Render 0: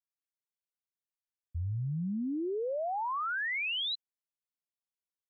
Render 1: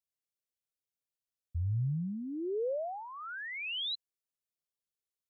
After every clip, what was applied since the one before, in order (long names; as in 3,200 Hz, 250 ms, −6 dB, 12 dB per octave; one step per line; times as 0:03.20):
octave-band graphic EQ 125/250/500/1,000/2,000 Hz +4/−7/+5/−12/−5 dB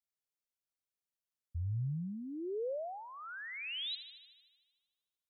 delay with a high-pass on its return 76 ms, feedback 68%, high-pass 1,700 Hz, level −11.5 dB
level −4 dB